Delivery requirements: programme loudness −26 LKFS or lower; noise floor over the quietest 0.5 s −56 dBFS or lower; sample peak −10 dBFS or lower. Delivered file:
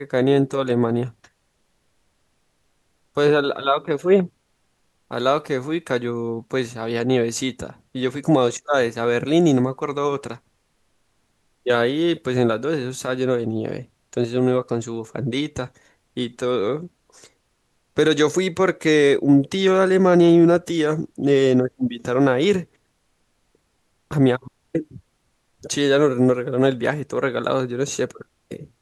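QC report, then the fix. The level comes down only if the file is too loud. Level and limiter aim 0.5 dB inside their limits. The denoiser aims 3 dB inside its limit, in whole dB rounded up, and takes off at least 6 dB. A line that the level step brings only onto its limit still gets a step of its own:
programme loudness −20.5 LKFS: out of spec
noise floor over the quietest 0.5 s −67 dBFS: in spec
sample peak −5.5 dBFS: out of spec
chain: level −6 dB

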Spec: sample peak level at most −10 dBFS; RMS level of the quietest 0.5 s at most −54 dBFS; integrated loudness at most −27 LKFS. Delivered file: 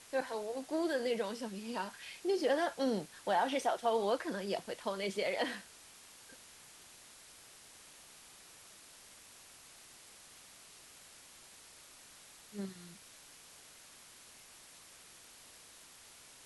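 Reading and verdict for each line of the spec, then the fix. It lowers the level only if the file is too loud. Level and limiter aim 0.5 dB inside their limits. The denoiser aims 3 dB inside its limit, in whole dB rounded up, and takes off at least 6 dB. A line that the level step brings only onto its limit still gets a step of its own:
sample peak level −20.0 dBFS: in spec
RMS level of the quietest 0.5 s −57 dBFS: in spec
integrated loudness −36.0 LKFS: in spec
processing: no processing needed

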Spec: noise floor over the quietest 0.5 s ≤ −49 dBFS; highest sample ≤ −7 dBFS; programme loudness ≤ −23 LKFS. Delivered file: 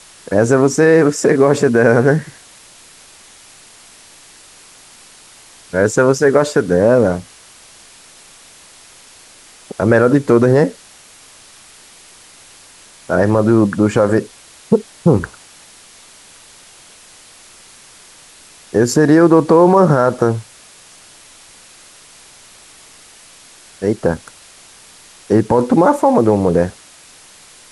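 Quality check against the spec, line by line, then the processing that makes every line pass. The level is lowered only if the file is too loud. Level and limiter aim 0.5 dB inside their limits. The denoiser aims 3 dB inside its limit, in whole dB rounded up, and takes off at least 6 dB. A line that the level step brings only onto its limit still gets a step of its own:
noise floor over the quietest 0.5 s −43 dBFS: out of spec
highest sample −1.5 dBFS: out of spec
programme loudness −13.5 LKFS: out of spec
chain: level −10 dB

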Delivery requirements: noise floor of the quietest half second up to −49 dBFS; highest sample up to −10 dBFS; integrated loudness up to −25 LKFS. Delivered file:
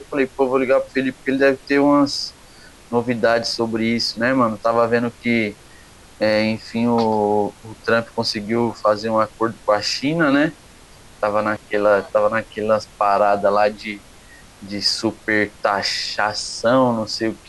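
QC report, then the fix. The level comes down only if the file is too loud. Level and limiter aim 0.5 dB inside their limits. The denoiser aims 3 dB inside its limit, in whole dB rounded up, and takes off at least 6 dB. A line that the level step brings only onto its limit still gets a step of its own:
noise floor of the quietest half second −45 dBFS: out of spec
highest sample −5.5 dBFS: out of spec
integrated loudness −19.0 LKFS: out of spec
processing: level −6.5 dB

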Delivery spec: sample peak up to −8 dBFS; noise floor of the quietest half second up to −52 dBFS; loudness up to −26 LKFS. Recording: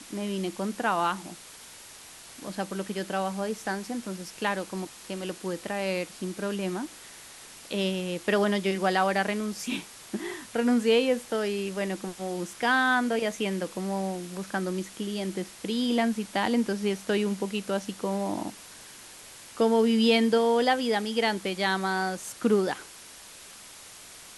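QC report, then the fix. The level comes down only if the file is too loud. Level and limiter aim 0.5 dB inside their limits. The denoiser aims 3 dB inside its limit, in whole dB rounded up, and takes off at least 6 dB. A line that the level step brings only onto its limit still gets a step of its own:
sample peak −9.5 dBFS: in spec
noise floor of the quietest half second −47 dBFS: out of spec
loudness −28.0 LKFS: in spec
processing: broadband denoise 8 dB, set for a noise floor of −47 dBFS

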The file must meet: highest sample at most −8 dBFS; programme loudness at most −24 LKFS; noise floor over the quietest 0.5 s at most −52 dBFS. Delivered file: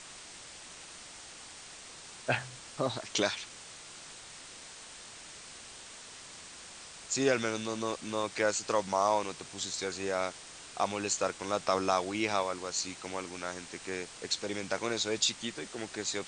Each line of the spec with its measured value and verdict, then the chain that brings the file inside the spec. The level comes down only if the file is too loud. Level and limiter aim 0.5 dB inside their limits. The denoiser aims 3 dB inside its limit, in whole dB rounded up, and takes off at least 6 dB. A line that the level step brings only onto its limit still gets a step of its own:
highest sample −13.0 dBFS: in spec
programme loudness −33.0 LKFS: in spec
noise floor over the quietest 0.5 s −49 dBFS: out of spec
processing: broadband denoise 6 dB, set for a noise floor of −49 dBFS

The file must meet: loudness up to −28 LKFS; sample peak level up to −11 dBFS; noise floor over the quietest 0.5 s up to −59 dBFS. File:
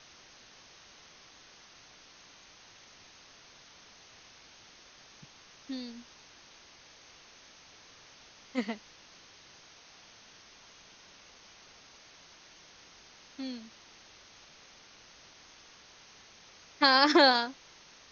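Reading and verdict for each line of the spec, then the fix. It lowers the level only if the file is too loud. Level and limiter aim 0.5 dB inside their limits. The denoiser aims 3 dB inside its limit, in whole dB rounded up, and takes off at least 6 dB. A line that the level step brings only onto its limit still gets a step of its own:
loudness −27.5 LKFS: out of spec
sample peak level −9.0 dBFS: out of spec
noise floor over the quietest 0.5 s −56 dBFS: out of spec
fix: broadband denoise 6 dB, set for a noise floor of −56 dBFS
level −1 dB
brickwall limiter −11.5 dBFS

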